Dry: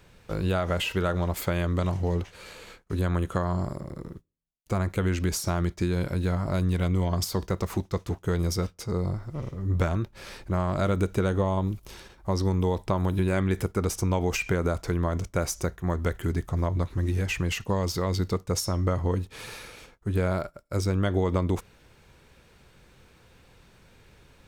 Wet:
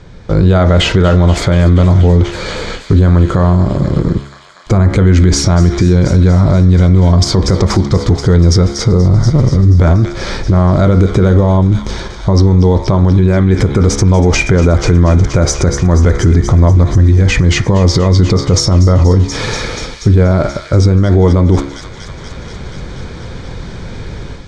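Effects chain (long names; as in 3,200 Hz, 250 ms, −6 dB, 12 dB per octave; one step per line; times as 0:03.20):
low-pass filter 6,700 Hz 24 dB per octave
low-shelf EQ 490 Hz +8.5 dB
notch filter 2,700 Hz, Q 5
hum removal 69.68 Hz, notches 35
automatic gain control
delay with a high-pass on its return 240 ms, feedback 78%, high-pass 2,400 Hz, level −9.5 dB
boost into a limiter +14 dB
level −1 dB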